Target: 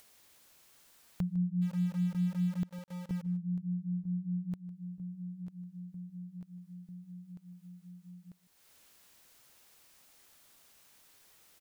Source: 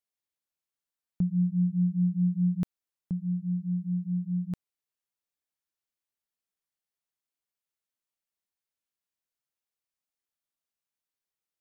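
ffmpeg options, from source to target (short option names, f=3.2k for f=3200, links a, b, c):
-filter_complex "[0:a]asplit=2[a][b];[b]aecho=0:1:945|1890|2835|3780:0.168|0.0789|0.0371|0.0174[c];[a][c]amix=inputs=2:normalize=0,acompressor=mode=upward:threshold=-28dB:ratio=2.5,asplit=3[d][e][f];[d]afade=t=out:st=1.61:d=0.02[g];[e]aeval=exprs='val(0)*gte(abs(val(0)),0.0141)':c=same,afade=t=in:st=1.61:d=0.02,afade=t=out:st=3.21:d=0.02[h];[f]afade=t=in:st=3.21:d=0.02[i];[g][h][i]amix=inputs=3:normalize=0,asplit=2[j][k];[k]aecho=0:1:154:0.126[l];[j][l]amix=inputs=2:normalize=0,volume=-6.5dB"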